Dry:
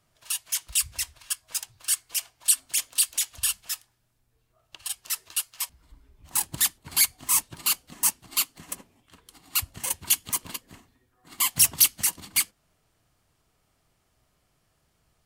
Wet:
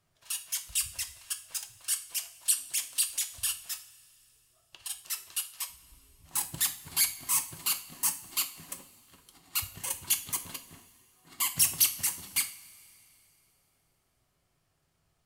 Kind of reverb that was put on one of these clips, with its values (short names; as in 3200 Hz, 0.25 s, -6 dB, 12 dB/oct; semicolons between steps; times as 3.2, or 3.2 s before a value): two-slope reverb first 0.41 s, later 2.9 s, from -18 dB, DRR 6.5 dB; gain -6 dB